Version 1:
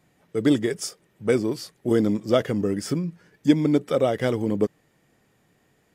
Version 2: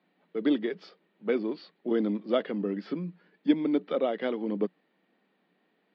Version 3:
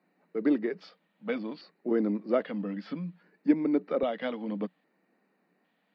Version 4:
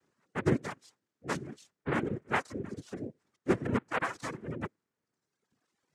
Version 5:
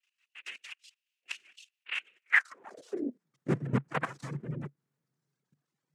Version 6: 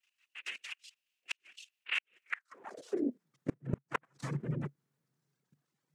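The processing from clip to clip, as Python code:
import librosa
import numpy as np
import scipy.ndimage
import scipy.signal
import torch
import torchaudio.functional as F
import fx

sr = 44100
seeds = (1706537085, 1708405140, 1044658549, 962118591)

y1 = scipy.signal.sosfilt(scipy.signal.cheby1(5, 1.0, [180.0, 4300.0], 'bandpass', fs=sr, output='sos'), x)
y1 = y1 * librosa.db_to_amplitude(-5.5)
y2 = fx.filter_lfo_notch(y1, sr, shape='square', hz=0.62, low_hz=380.0, high_hz=3300.0, q=1.7)
y3 = fx.comb_fb(y2, sr, f0_hz=280.0, decay_s=0.87, harmonics='all', damping=0.0, mix_pct=30)
y3 = fx.noise_vocoder(y3, sr, seeds[0], bands=3)
y3 = fx.dereverb_blind(y3, sr, rt60_s=1.2)
y4 = fx.level_steps(y3, sr, step_db=15)
y4 = fx.filter_sweep_highpass(y4, sr, from_hz=2700.0, to_hz=140.0, start_s=2.22, end_s=3.32, q=7.4)
y4 = y4 * librosa.db_to_amplitude(1.0)
y5 = fx.gate_flip(y4, sr, shuts_db=-21.0, range_db=-36)
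y5 = y5 * librosa.db_to_amplitude(1.5)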